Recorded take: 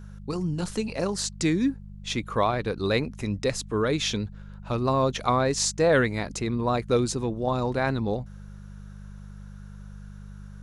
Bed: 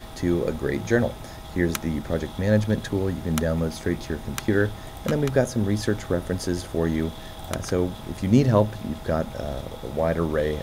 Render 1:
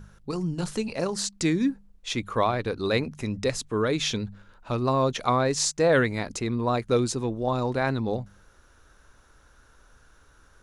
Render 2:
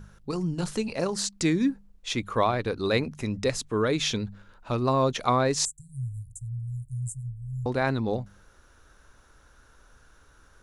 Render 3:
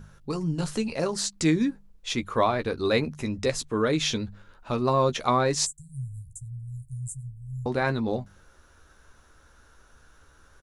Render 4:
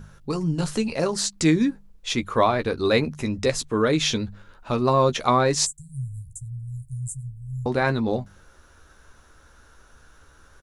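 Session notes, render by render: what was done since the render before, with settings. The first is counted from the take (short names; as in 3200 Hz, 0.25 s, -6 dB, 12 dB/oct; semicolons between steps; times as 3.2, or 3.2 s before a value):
de-hum 50 Hz, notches 4
5.65–7.66 Chebyshev band-stop 130–7700 Hz, order 5
doubler 13 ms -8 dB
gain +3.5 dB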